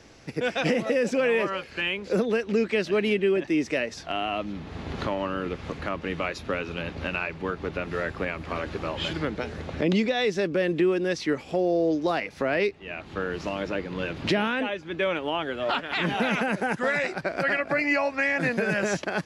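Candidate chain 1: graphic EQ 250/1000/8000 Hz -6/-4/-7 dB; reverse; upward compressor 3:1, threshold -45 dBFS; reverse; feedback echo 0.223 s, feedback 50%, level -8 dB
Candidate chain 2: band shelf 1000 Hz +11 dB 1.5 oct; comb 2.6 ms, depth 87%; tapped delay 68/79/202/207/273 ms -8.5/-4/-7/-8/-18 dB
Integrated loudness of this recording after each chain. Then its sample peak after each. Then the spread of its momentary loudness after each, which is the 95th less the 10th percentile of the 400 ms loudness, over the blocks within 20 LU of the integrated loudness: -28.5, -17.5 LUFS; -14.0, -1.5 dBFS; 8, 8 LU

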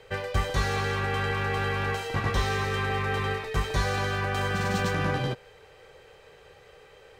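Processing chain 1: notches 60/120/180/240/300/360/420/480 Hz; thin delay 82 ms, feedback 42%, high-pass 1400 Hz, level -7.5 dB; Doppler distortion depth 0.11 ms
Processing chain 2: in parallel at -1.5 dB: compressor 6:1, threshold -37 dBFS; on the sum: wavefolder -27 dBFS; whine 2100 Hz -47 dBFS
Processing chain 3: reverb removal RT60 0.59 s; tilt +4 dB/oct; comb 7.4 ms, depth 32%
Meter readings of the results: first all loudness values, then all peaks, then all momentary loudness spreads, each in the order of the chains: -27.5, -31.0, -28.5 LUFS; -13.5, -26.0, -14.5 dBFS; 3, 14, 4 LU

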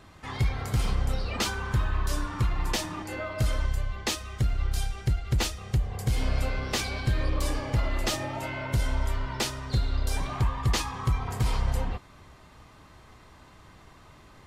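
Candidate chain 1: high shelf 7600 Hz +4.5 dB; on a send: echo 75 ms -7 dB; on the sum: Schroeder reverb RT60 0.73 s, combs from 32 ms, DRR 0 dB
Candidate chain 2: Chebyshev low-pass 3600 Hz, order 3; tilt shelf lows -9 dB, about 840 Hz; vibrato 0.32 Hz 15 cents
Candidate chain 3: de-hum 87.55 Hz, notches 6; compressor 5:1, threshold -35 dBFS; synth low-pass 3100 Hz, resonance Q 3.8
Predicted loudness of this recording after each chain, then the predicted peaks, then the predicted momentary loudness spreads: -25.5, -31.5, -37.5 LUFS; -9.5, -12.0, -18.5 dBFS; 4, 8, 15 LU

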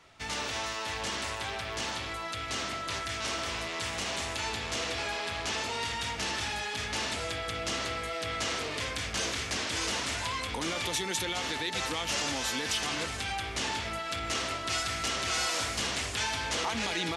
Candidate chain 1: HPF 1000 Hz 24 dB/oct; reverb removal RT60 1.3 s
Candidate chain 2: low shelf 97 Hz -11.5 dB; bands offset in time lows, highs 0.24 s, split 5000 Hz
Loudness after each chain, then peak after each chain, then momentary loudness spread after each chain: -35.0, -33.0 LUFS; -18.5, -20.0 dBFS; 5, 4 LU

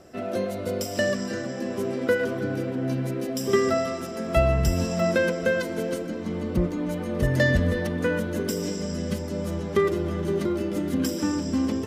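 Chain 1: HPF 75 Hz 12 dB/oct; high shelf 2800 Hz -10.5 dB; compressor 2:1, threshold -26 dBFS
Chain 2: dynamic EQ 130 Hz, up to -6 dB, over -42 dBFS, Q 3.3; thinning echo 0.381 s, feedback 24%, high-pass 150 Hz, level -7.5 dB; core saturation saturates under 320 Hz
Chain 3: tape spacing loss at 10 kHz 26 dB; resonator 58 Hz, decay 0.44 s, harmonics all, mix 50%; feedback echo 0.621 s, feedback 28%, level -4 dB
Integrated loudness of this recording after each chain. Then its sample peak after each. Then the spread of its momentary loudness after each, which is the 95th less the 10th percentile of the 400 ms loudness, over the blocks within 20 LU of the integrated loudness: -29.5, -26.5, -30.0 LUFS; -12.0, -8.5, -13.0 dBFS; 4, 6, 7 LU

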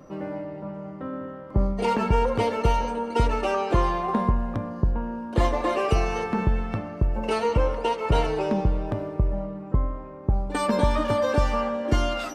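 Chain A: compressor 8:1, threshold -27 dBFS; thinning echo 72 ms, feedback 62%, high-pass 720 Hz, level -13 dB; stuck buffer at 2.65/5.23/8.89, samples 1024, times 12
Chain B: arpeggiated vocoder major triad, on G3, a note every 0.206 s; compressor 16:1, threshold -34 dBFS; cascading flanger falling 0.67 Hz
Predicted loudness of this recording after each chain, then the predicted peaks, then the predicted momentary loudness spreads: -32.5, -44.0 LUFS; -15.5, -30.0 dBFS; 5, 4 LU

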